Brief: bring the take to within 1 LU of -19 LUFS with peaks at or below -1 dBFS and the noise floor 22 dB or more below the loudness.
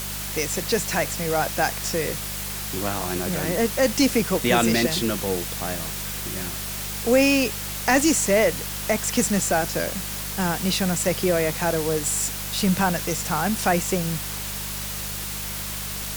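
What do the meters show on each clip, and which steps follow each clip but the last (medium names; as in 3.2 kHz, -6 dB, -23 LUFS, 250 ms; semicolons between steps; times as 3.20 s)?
hum 50 Hz; highest harmonic 200 Hz; hum level -35 dBFS; noise floor -31 dBFS; noise floor target -45 dBFS; loudness -23.0 LUFS; peak level -5.5 dBFS; loudness target -19.0 LUFS
-> de-hum 50 Hz, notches 4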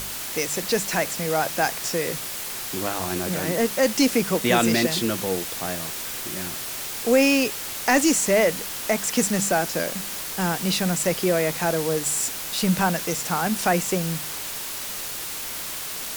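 hum not found; noise floor -32 dBFS; noise floor target -46 dBFS
-> noise print and reduce 14 dB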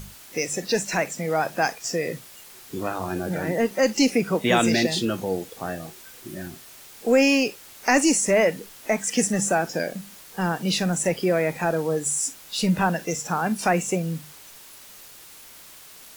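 noise floor -46 dBFS; loudness -23.5 LUFS; peak level -6.0 dBFS; loudness target -19.0 LUFS
-> trim +4.5 dB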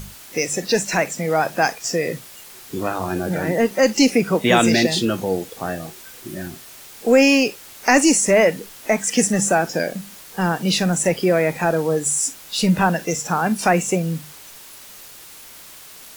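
loudness -19.0 LUFS; peak level -1.5 dBFS; noise floor -42 dBFS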